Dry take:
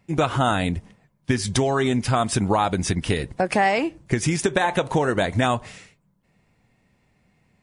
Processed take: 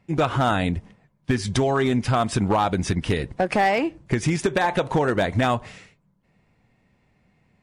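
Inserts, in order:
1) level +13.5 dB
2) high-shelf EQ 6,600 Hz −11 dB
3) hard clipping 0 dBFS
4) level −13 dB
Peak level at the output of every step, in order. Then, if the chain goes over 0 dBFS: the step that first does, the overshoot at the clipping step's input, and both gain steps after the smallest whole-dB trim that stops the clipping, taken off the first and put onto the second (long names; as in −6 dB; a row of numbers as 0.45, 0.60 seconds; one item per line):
+7.0, +7.0, 0.0, −13.0 dBFS
step 1, 7.0 dB
step 1 +6.5 dB, step 4 −6 dB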